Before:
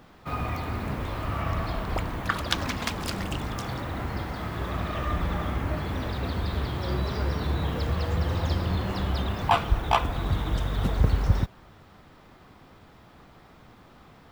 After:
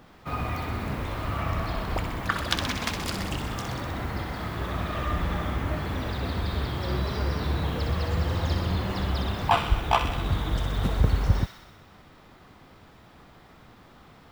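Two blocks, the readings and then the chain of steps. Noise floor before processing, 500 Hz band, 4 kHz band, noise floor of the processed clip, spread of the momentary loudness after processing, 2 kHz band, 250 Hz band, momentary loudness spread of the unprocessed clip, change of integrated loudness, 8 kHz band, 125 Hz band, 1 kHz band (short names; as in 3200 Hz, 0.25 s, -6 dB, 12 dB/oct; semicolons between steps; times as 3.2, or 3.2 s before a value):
-53 dBFS, 0.0 dB, +1.5 dB, -53 dBFS, 7 LU, +1.0 dB, 0.0 dB, 8 LU, +0.5 dB, +1.5 dB, 0.0 dB, +0.5 dB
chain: thin delay 63 ms, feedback 69%, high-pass 1600 Hz, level -6 dB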